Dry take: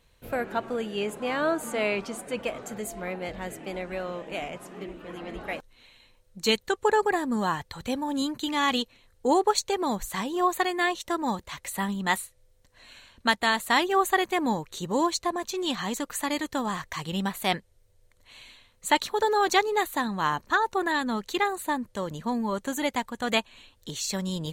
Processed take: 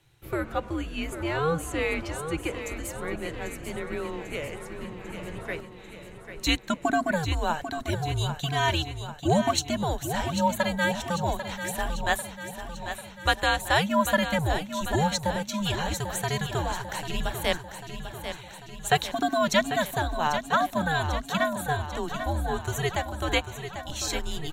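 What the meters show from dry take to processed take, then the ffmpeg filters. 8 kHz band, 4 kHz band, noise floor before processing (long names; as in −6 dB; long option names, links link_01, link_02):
+0.5 dB, +0.5 dB, −62 dBFS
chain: -af "bandreject=frequency=420:width=12,afreqshift=-160,aecho=1:1:794|1588|2382|3176|3970|4764|5558:0.335|0.201|0.121|0.0724|0.0434|0.026|0.0156"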